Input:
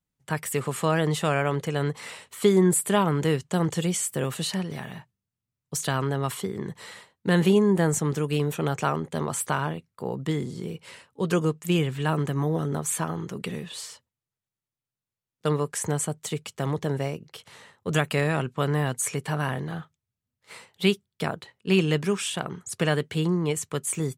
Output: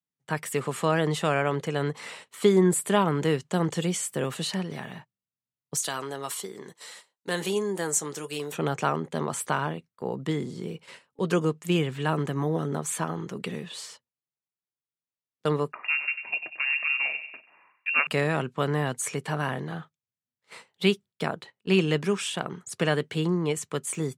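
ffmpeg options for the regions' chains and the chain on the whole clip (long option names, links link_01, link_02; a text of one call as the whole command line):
ffmpeg -i in.wav -filter_complex "[0:a]asettb=1/sr,asplit=3[link_01][link_02][link_03];[link_01]atrim=end=5.774[link_04];[link_02]atrim=start=5.77:end=8.52,asetpts=PTS-STARTPTS,afade=type=in:duration=0.004:curve=qsin,afade=type=out:start_time=2.746:duration=0.004:curve=qsin,bass=frequency=250:gain=-12,treble=frequency=4000:gain=12,flanger=delay=5.3:depth=2.2:regen=-70:speed=1.6:shape=sinusoidal[link_05];[link_03]atrim=start=8.516[link_06];[link_04][link_05]acrossfade=duration=0.004:curve1=hsin:curve2=qsin[link_07];[link_07][link_06]acrossfade=duration=0.004:curve1=qsin:curve2=hsin,asettb=1/sr,asplit=3[link_08][link_09][link_10];[link_08]atrim=end=15.724[link_11];[link_09]atrim=start=15.72:end=18.07,asetpts=PTS-STARTPTS,afade=type=in:duration=0.004:curve=qsin,afade=type=out:start_time=2.346:duration=0.004:curve=qsin,asplit=2[link_12][link_13];[link_13]adelay=96,lowpass=frequency=1600:poles=1,volume=-9dB,asplit=2[link_14][link_15];[link_15]adelay=96,lowpass=frequency=1600:poles=1,volume=0.52,asplit=2[link_16][link_17];[link_17]adelay=96,lowpass=frequency=1600:poles=1,volume=0.52,asplit=2[link_18][link_19];[link_19]adelay=96,lowpass=frequency=1600:poles=1,volume=0.52,asplit=2[link_20][link_21];[link_21]adelay=96,lowpass=frequency=1600:poles=1,volume=0.52,asplit=2[link_22][link_23];[link_23]adelay=96,lowpass=frequency=1600:poles=1,volume=0.52[link_24];[link_12][link_14][link_16][link_18][link_20][link_22][link_24]amix=inputs=7:normalize=0,atrim=end_sample=103635,lowpass=frequency=2500:width_type=q:width=0.5098,lowpass=frequency=2500:width_type=q:width=0.6013,lowpass=frequency=2500:width_type=q:width=0.9,lowpass=frequency=2500:width_type=q:width=2.563,afreqshift=-2900,highpass=160[link_25];[link_10]atrim=start=18.066[link_26];[link_11][link_25]acrossfade=duration=0.004:curve1=hsin:curve2=qsin[link_27];[link_27][link_26]acrossfade=duration=0.004:curve1=qsin:curve2=hsin,highpass=150,agate=range=-9dB:threshold=-45dB:ratio=16:detection=peak,highshelf=frequency=11000:gain=-10.5" out.wav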